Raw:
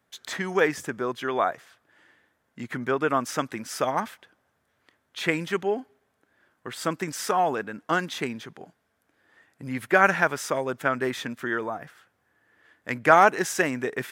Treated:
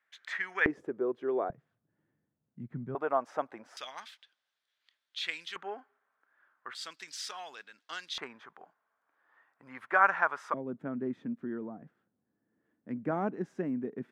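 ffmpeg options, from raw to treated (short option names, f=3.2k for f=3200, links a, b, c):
-af "asetnsamples=n=441:p=0,asendcmd='0.66 bandpass f 400;1.5 bandpass f 150;2.95 bandpass f 720;3.77 bandpass f 3800;5.56 bandpass f 1300;6.75 bandpass f 4100;8.18 bandpass f 1100;10.54 bandpass f 220',bandpass=f=1.9k:t=q:w=2.3:csg=0"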